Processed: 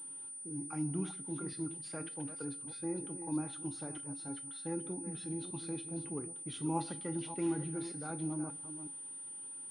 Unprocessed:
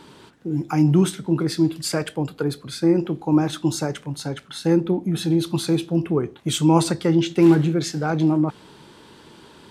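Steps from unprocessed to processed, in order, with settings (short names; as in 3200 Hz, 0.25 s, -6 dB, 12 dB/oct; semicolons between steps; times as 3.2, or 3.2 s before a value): reverse delay 0.306 s, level -10.5 dB; resonator 280 Hz, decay 0.18 s, harmonics odd, mix 80%; on a send at -17.5 dB: reverb RT60 0.90 s, pre-delay 3 ms; on the sum: pulse-width modulation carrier 9300 Hz; gain -8.5 dB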